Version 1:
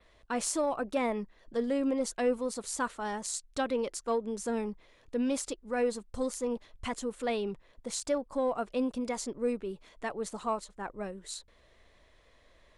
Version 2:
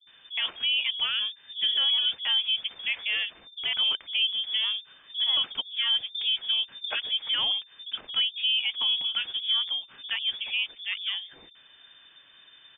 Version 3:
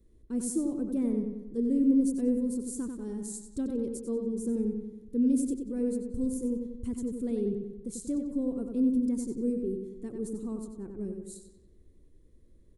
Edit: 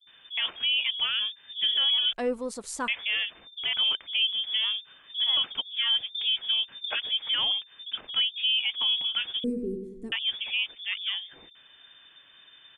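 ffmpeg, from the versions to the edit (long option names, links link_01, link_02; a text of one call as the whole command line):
ffmpeg -i take0.wav -i take1.wav -i take2.wav -filter_complex "[1:a]asplit=3[link_01][link_02][link_03];[link_01]atrim=end=2.132[link_04];[0:a]atrim=start=2.128:end=2.882[link_05];[link_02]atrim=start=2.878:end=9.442[link_06];[2:a]atrim=start=9.438:end=10.122[link_07];[link_03]atrim=start=10.118[link_08];[link_04][link_05]acrossfade=duration=0.004:curve1=hsin:curve2=hsin[link_09];[link_09][link_06]acrossfade=duration=0.004:curve1=hsin:curve2=hsin[link_10];[link_10][link_07]acrossfade=duration=0.004:curve1=hsin:curve2=hsin[link_11];[link_11][link_08]acrossfade=duration=0.004:curve1=hsin:curve2=hsin" out.wav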